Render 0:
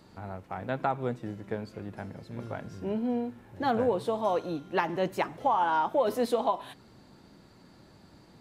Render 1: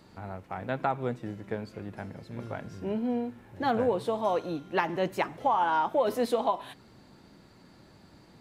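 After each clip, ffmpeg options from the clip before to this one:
-af "equalizer=f=2.2k:w=1.5:g=2"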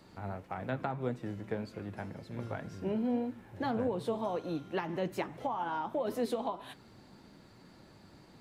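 -filter_complex "[0:a]acrossover=split=330[a][b];[b]acompressor=threshold=-33dB:ratio=4[c];[a][c]amix=inputs=2:normalize=0,flanger=delay=3:depth=7.5:regen=78:speed=1.8:shape=triangular,volume=3dB"

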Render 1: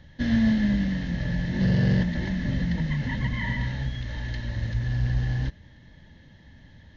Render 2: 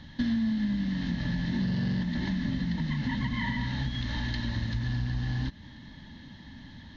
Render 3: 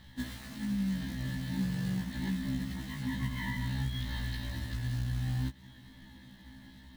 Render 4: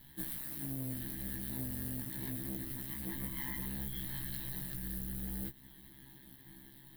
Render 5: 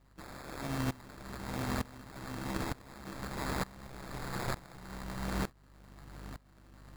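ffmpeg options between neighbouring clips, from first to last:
-af "equalizer=f=250:t=o:w=1:g=11,equalizer=f=500:t=o:w=1:g=-7,equalizer=f=1k:t=o:w=1:g=9,equalizer=f=4k:t=o:w=1:g=10,acompressor=threshold=-27dB:ratio=6"
-af "acrusher=bits=4:mode=log:mix=0:aa=0.000001,afftfilt=real='re*1.73*eq(mod(b,3),0)':imag='im*1.73*eq(mod(b,3),0)':win_size=2048:overlap=0.75,volume=-3.5dB"
-filter_complex "[0:a]aeval=exprs='val(0)*sin(2*PI*68*n/s)':c=same,acrossover=split=6500[a][b];[a]asoftclip=type=tanh:threshold=-33dB[c];[c][b]amix=inputs=2:normalize=0,aexciter=amount=8.5:drive=6.6:freq=9.2k,volume=-3dB"
-af "aeval=exprs='val(0)+0.00282*(sin(2*PI*50*n/s)+sin(2*PI*2*50*n/s)/2+sin(2*PI*3*50*n/s)/3+sin(2*PI*4*50*n/s)/4+sin(2*PI*5*50*n/s)/5)':c=same,acrusher=samples=15:mix=1:aa=0.000001,aeval=exprs='val(0)*pow(10,-22*if(lt(mod(-1.1*n/s,1),2*abs(-1.1)/1000),1-mod(-1.1*n/s,1)/(2*abs(-1.1)/1000),(mod(-1.1*n/s,1)-2*abs(-1.1)/1000)/(1-2*abs(-1.1)/1000))/20)':c=same,volume=8dB"

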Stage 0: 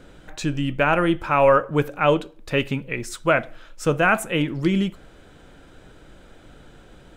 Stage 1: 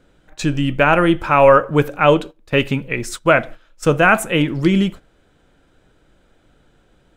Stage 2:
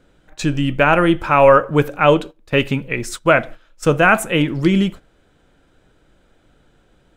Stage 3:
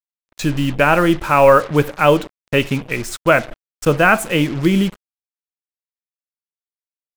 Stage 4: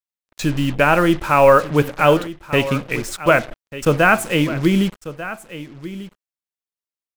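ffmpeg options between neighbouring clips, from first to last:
-af "agate=range=-14dB:threshold=-34dB:ratio=16:detection=peak,volume=5.5dB"
-af anull
-af "acrusher=bits=4:mix=0:aa=0.5"
-af "aecho=1:1:1193:0.178,volume=-1dB"

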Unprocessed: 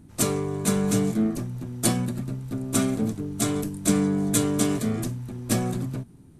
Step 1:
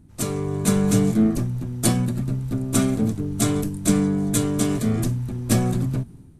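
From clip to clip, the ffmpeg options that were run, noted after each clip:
-af "dynaudnorm=f=110:g=7:m=10.5dB,lowshelf=f=120:g=9,volume=-5dB"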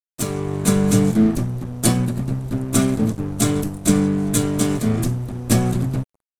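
-af "aeval=exprs='sgn(val(0))*max(abs(val(0))-0.0158,0)':c=same,volume=3.5dB"

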